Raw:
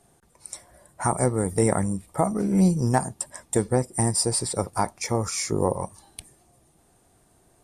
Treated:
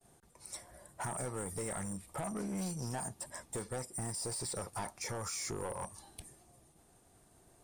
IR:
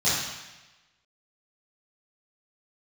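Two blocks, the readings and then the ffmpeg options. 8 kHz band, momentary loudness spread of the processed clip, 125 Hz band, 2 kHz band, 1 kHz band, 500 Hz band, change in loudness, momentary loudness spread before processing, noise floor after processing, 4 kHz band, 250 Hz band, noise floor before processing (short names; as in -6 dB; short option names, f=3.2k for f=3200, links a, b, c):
-11.5 dB, 10 LU, -17.0 dB, -10.5 dB, -15.0 dB, -16.5 dB, -15.0 dB, 19 LU, -66 dBFS, -11.5 dB, -18.0 dB, -62 dBFS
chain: -filter_complex "[0:a]aemphasis=mode=reproduction:type=cd,agate=range=-33dB:threshold=-59dB:ratio=3:detection=peak,highshelf=f=5k:g=11,acrossover=split=710[a][b];[a]acompressor=threshold=-32dB:ratio=6[c];[b]alimiter=level_in=1.5dB:limit=-24dB:level=0:latency=1:release=11,volume=-1.5dB[d];[c][d]amix=inputs=2:normalize=0,asoftclip=type=tanh:threshold=-30.5dB,volume=-3dB"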